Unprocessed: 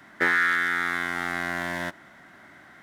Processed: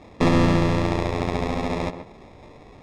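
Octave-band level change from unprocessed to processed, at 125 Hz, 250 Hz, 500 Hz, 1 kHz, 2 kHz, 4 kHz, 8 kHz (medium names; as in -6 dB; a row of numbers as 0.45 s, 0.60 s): +20.0 dB, +14.5 dB, +12.5 dB, +2.5 dB, -10.5 dB, +3.0 dB, +2.0 dB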